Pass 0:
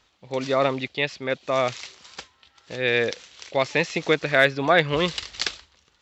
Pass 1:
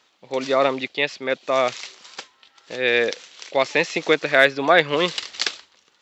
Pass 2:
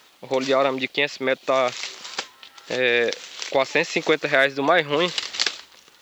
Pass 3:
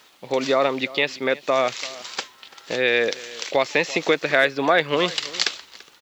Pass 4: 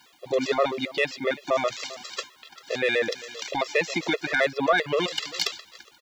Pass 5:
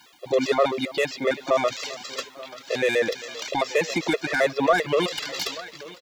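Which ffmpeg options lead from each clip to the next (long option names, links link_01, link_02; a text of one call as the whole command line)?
ffmpeg -i in.wav -af "highpass=240,volume=3dB" out.wav
ffmpeg -i in.wav -af "acompressor=threshold=-31dB:ratio=2,acrusher=bits=10:mix=0:aa=0.000001,volume=8dB" out.wav
ffmpeg -i in.wav -filter_complex "[0:a]asplit=2[link_01][link_02];[link_02]adelay=338.2,volume=-19dB,highshelf=frequency=4000:gain=-7.61[link_03];[link_01][link_03]amix=inputs=2:normalize=0" out.wav
ffmpeg -i in.wav -af "asoftclip=type=tanh:threshold=-7.5dB,afftfilt=real='re*gt(sin(2*PI*7.6*pts/sr)*(1-2*mod(floor(b*sr/1024/350),2)),0)':imag='im*gt(sin(2*PI*7.6*pts/sr)*(1-2*mod(floor(b*sr/1024/350),2)),0)':win_size=1024:overlap=0.75" out.wav
ffmpeg -i in.wav -filter_complex "[0:a]aecho=1:1:884|1768|2652:0.1|0.042|0.0176,acrossover=split=1100[link_01][link_02];[link_02]asoftclip=type=tanh:threshold=-26.5dB[link_03];[link_01][link_03]amix=inputs=2:normalize=0,volume=3dB" out.wav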